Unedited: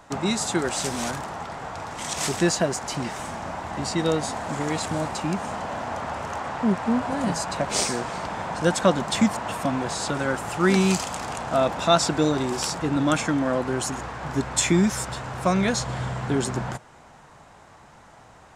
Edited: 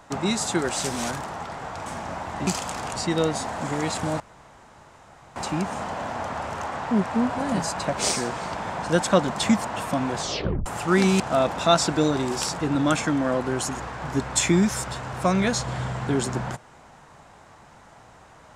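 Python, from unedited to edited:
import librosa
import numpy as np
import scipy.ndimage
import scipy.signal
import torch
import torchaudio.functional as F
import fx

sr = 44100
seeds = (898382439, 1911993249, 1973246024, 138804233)

y = fx.edit(x, sr, fx.cut(start_s=1.86, length_s=1.37),
    fx.insert_room_tone(at_s=5.08, length_s=1.16),
    fx.tape_stop(start_s=9.91, length_s=0.47),
    fx.move(start_s=10.92, length_s=0.49, to_s=3.84), tone=tone)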